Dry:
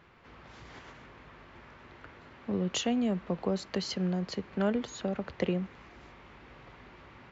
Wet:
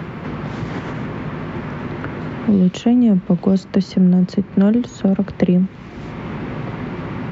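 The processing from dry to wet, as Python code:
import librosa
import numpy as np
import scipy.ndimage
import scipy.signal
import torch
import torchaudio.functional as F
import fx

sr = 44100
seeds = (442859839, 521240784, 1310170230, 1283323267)

y = fx.peak_eq(x, sr, hz=160.0, db=15.0, octaves=2.4)
y = fx.band_squash(y, sr, depth_pct=70)
y = y * librosa.db_to_amplitude(5.0)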